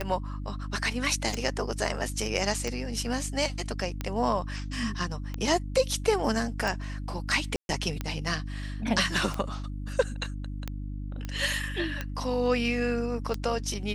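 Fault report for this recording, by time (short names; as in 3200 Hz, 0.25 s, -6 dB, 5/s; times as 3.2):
hum 50 Hz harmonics 6 -35 dBFS
tick 45 rpm -17 dBFS
7.56–7.69 gap 0.131 s
11.25 pop -21 dBFS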